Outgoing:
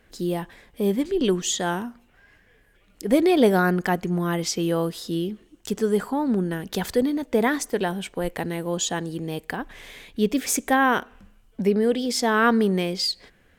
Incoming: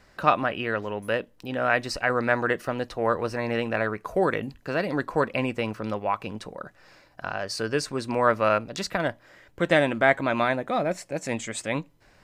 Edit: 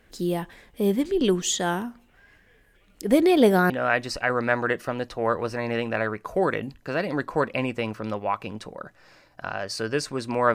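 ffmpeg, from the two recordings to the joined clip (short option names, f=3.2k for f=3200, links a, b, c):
-filter_complex "[0:a]apad=whole_dur=10.54,atrim=end=10.54,atrim=end=3.702[a];[1:a]atrim=start=1.498:end=8.34[b];[a][b]acrossfade=d=0.004:c1=hsin:c2=hsin"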